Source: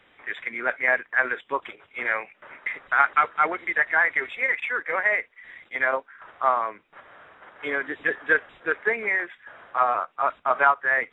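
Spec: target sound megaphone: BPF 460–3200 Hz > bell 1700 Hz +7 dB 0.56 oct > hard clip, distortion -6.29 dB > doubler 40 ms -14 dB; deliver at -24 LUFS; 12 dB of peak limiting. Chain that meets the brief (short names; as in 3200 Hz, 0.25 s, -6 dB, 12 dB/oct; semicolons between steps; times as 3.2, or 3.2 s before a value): limiter -16.5 dBFS; BPF 460–3200 Hz; bell 1700 Hz +7 dB 0.56 oct; hard clip -25.5 dBFS; doubler 40 ms -14 dB; gain +5.5 dB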